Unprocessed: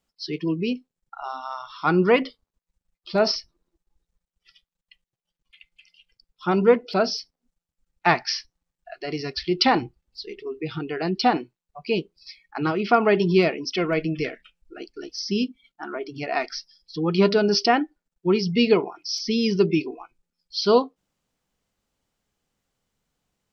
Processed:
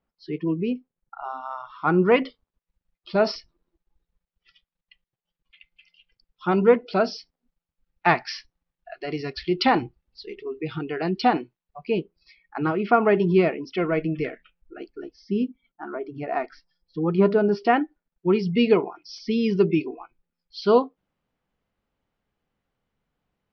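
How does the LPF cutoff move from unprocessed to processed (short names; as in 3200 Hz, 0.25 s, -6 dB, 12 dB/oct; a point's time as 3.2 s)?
1800 Hz
from 2.12 s 3400 Hz
from 11.84 s 2100 Hz
from 14.96 s 1400 Hz
from 17.66 s 2600 Hz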